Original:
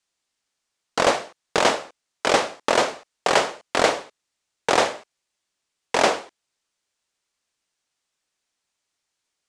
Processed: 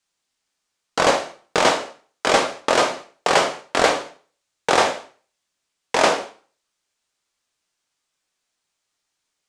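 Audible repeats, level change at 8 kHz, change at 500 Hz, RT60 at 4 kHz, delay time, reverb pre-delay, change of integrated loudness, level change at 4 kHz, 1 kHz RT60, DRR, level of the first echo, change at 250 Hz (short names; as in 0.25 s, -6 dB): none, +2.0 dB, +2.0 dB, 0.40 s, none, 6 ms, +2.0 dB, +2.0 dB, 0.40 s, 5.0 dB, none, +2.0 dB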